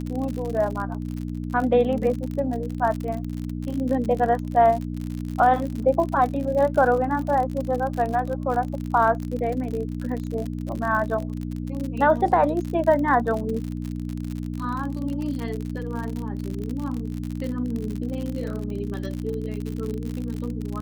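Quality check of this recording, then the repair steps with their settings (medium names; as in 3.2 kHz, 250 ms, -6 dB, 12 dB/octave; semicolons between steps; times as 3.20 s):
crackle 58 per s -28 dBFS
hum 60 Hz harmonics 5 -30 dBFS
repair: de-click; de-hum 60 Hz, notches 5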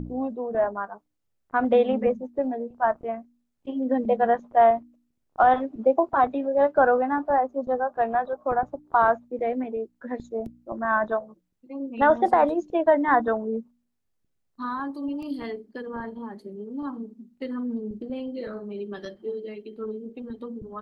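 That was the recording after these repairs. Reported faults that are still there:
nothing left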